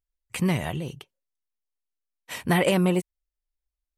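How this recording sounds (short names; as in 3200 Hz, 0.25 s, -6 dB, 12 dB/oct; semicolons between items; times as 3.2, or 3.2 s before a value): noise floor -88 dBFS; spectral tilt -5.5 dB/oct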